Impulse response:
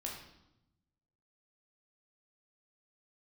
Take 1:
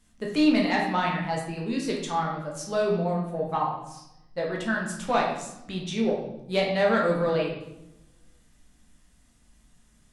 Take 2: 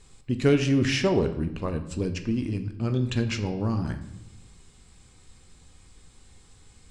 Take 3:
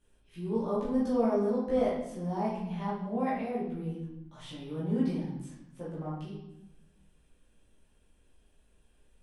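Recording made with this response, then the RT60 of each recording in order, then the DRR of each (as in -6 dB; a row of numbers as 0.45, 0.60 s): 1; 0.85, 0.90, 0.85 s; -2.0, 7.5, -8.0 dB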